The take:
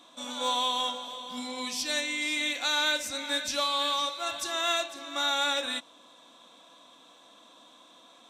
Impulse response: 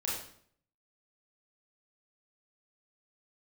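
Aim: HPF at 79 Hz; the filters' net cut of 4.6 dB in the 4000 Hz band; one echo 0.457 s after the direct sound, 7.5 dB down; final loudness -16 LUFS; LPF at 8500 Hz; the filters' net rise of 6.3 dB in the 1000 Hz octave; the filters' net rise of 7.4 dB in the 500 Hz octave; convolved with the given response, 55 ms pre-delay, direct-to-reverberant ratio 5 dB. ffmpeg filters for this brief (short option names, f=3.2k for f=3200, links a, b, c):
-filter_complex "[0:a]highpass=79,lowpass=8.5k,equalizer=f=500:t=o:g=7,equalizer=f=1k:t=o:g=6,equalizer=f=4k:t=o:g=-5.5,aecho=1:1:457:0.422,asplit=2[a][b];[1:a]atrim=start_sample=2205,adelay=55[c];[b][c]afir=irnorm=-1:irlink=0,volume=-9.5dB[d];[a][d]amix=inputs=2:normalize=0,volume=10dB"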